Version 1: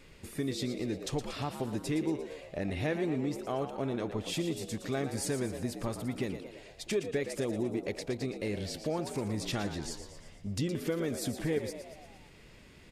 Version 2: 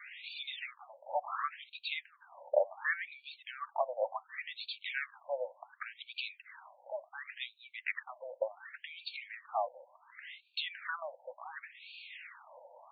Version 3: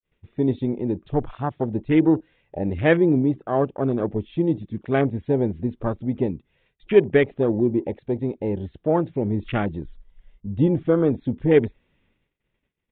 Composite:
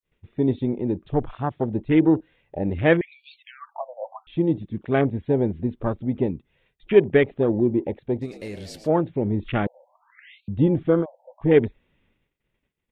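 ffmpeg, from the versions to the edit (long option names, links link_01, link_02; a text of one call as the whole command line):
ffmpeg -i take0.wav -i take1.wav -i take2.wav -filter_complex "[1:a]asplit=3[link_01][link_02][link_03];[2:a]asplit=5[link_04][link_05][link_06][link_07][link_08];[link_04]atrim=end=3.012[link_09];[link_01]atrim=start=3.008:end=4.272[link_10];[link_05]atrim=start=4.268:end=8.27[link_11];[0:a]atrim=start=8.21:end=8.9[link_12];[link_06]atrim=start=8.84:end=9.672[link_13];[link_02]atrim=start=9.668:end=10.482[link_14];[link_07]atrim=start=10.478:end=11.06[link_15];[link_03]atrim=start=11:end=11.46[link_16];[link_08]atrim=start=11.4[link_17];[link_09][link_10]acrossfade=duration=0.004:curve1=hsin:curve2=hsin[link_18];[link_18][link_11]acrossfade=duration=0.004:curve1=hsin:curve2=hsin[link_19];[link_19][link_12]acrossfade=duration=0.06:curve1=tri:curve2=tri[link_20];[link_20][link_13]acrossfade=duration=0.06:curve1=tri:curve2=tri[link_21];[link_21][link_14]acrossfade=duration=0.004:curve1=hsin:curve2=hsin[link_22];[link_22][link_15]acrossfade=duration=0.004:curve1=hsin:curve2=hsin[link_23];[link_23][link_16]acrossfade=duration=0.06:curve1=tri:curve2=tri[link_24];[link_24][link_17]acrossfade=duration=0.06:curve1=tri:curve2=tri" out.wav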